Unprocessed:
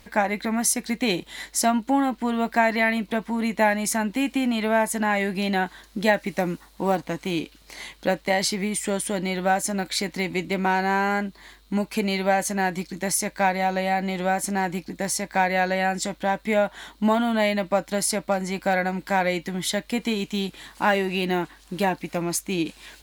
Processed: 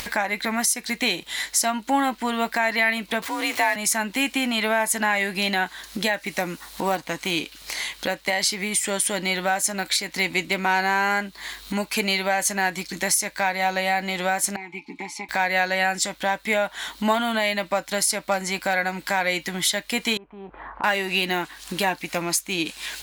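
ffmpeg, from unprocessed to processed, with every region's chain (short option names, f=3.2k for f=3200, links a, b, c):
-filter_complex "[0:a]asettb=1/sr,asplit=3[a][b][c];[a]atrim=end=3.224[d];[b]atrim=start=3.22:end=3.76,asetpts=PTS-STARTPTS,afade=t=in:d=0.004:c=qsin,afade=t=out:st=0.536:d=0.004:c=qsin,aeval=exprs='val(0)+0.5*0.0224*sgn(val(0))':c=same,bass=f=250:g=-10,treble=f=4k:g=0,afreqshift=49[e];[c]atrim=start=3.756[f];[d][e]acrossfade=d=0.004:c1=hsin:c2=qsin[g];[g][f]acrossfade=d=0.004:c1=qsin:c2=hsin,asettb=1/sr,asplit=3[h][i][j];[h]atrim=end=14.564[k];[i]atrim=start=14.56:end=15.29,asetpts=PTS-STARTPTS,afade=t=in:d=0.004:c=qsin,afade=t=out:st=0.726:d=0.004:c=qsin,asplit=3[l][m][n];[l]bandpass=f=300:t=q:w=8,volume=0dB[o];[m]bandpass=f=870:t=q:w=8,volume=-6dB[p];[n]bandpass=f=2.24k:t=q:w=8,volume=-9dB[q];[o][p][q]amix=inputs=3:normalize=0,equalizer=f=230:w=1.1:g=-4.5,aecho=1:1:4.8:0.99,atrim=end_sample=32193[r];[j]atrim=start=15.286[s];[k][r]acrossfade=d=0.004:c1=hsin:c2=qsin[t];[t][s]acrossfade=d=0.004:c1=qsin:c2=hsin,asettb=1/sr,asplit=3[u][v][w];[u]atrim=end=20.174[x];[v]atrim=start=20.17:end=20.84,asetpts=PTS-STARTPTS,afade=t=in:d=0.004:c=qsin,afade=t=out:st=0.666:d=0.004:c=qsin,lowpass=f=1.1k:w=0.5412,lowpass=f=1.1k:w=1.3066,equalizer=f=180:w=0.45:g=-13,acompressor=threshold=-45dB:ratio=2:attack=3.2:release=140:knee=1:detection=peak[y];[w]atrim=start=20.836[z];[x][y]acrossfade=d=0.004:c1=hsin:c2=qsin[aa];[aa][z]acrossfade=d=0.004:c1=qsin:c2=hsin,tiltshelf=f=740:g=-6.5,alimiter=limit=-12dB:level=0:latency=1:release=284,acompressor=mode=upward:threshold=-26dB:ratio=2.5,volume=2dB"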